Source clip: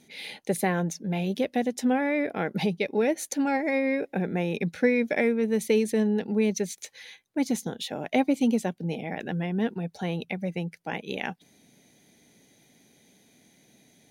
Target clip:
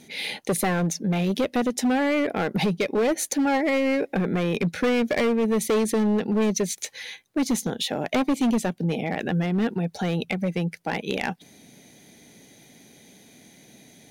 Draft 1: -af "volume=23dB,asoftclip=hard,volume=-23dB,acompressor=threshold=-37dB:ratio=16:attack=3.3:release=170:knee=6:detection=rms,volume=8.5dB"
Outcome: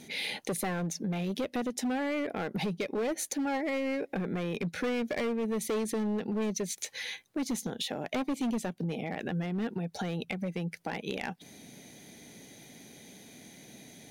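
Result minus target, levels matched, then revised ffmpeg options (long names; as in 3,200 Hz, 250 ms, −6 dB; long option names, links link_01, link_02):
downward compressor: peak gain reduction +9.5 dB
-af "volume=23dB,asoftclip=hard,volume=-23dB,acompressor=threshold=-26.5dB:ratio=16:attack=3.3:release=170:knee=6:detection=rms,volume=8.5dB"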